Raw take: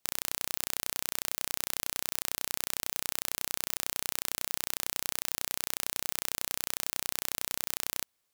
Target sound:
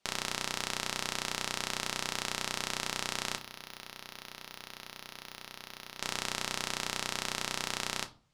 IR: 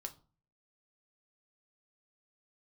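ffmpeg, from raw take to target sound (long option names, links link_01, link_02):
-filter_complex "[0:a]lowpass=5500,asplit=3[link_01][link_02][link_03];[link_01]afade=type=out:start_time=3.36:duration=0.02[link_04];[link_02]aeval=exprs='clip(val(0),-1,0.0355)':channel_layout=same,afade=type=in:start_time=3.36:duration=0.02,afade=type=out:start_time=5.99:duration=0.02[link_05];[link_03]afade=type=in:start_time=5.99:duration=0.02[link_06];[link_04][link_05][link_06]amix=inputs=3:normalize=0[link_07];[1:a]atrim=start_sample=2205[link_08];[link_07][link_08]afir=irnorm=-1:irlink=0,volume=8.5dB"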